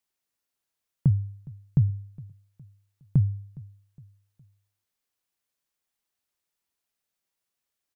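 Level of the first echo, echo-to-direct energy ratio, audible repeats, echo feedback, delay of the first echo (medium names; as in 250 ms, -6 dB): -21.5 dB, -20.5 dB, 2, 41%, 413 ms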